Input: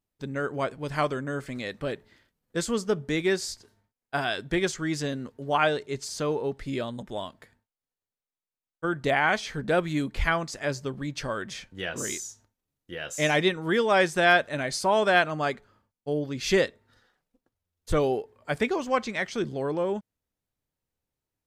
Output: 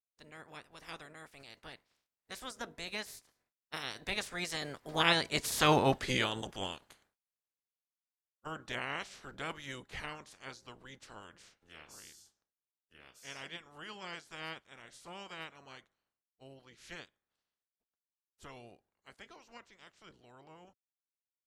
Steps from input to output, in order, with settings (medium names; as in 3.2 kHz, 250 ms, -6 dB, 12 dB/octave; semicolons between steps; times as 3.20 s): spectral peaks clipped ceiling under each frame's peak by 22 dB; Doppler pass-by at 5.75 s, 34 m/s, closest 13 m; trim +2.5 dB